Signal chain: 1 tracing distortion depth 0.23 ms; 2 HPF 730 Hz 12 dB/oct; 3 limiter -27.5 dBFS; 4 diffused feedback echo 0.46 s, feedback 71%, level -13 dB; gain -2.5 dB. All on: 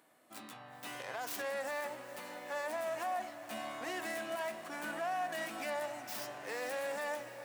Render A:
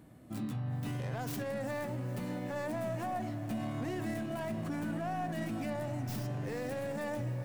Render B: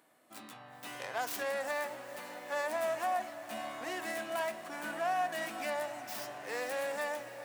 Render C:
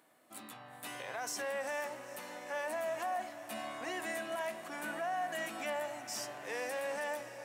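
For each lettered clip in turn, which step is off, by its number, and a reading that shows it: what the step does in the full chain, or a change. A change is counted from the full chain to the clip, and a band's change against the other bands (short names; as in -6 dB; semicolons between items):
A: 2, 125 Hz band +28.5 dB; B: 3, crest factor change +3.0 dB; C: 1, 8 kHz band +3.0 dB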